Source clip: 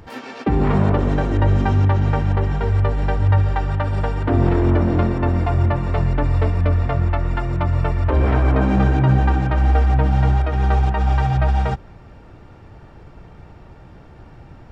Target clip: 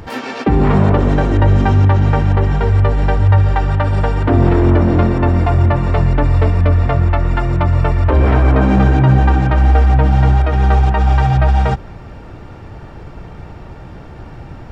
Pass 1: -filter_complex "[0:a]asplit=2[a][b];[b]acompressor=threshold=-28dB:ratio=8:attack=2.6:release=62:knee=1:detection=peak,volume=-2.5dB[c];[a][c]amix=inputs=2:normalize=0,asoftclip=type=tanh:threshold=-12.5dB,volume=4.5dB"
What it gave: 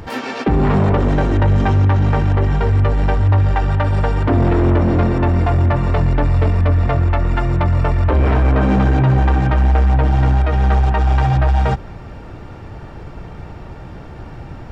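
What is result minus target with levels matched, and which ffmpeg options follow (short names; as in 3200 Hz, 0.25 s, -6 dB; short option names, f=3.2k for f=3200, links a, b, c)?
soft clip: distortion +15 dB
-filter_complex "[0:a]asplit=2[a][b];[b]acompressor=threshold=-28dB:ratio=8:attack=2.6:release=62:knee=1:detection=peak,volume=-2.5dB[c];[a][c]amix=inputs=2:normalize=0,asoftclip=type=tanh:threshold=-2.5dB,volume=4.5dB"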